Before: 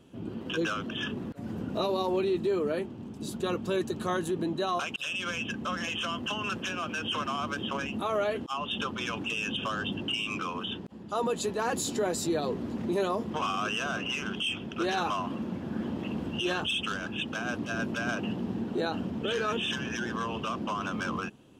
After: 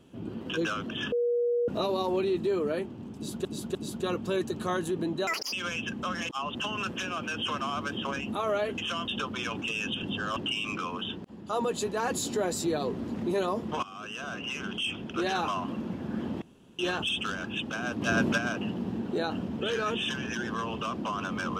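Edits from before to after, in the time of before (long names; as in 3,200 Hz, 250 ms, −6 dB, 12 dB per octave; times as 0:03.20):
0:01.12–0:01.68: beep over 479 Hz −23.5 dBFS
0:03.15–0:03.45: repeat, 3 plays
0:04.67–0:05.15: play speed 186%
0:05.91–0:06.21: swap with 0:08.44–0:08.70
0:09.65–0:09.99: reverse
0:13.45–0:14.80: fade in equal-power, from −18 dB
0:16.04–0:16.41: fill with room tone
0:17.64–0:18.00: clip gain +6.5 dB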